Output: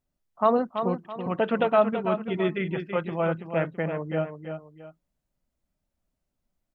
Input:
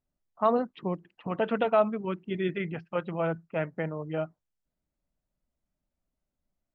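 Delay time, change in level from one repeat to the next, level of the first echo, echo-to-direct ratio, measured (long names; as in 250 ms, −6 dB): 331 ms, −9.0 dB, −8.0 dB, −7.5 dB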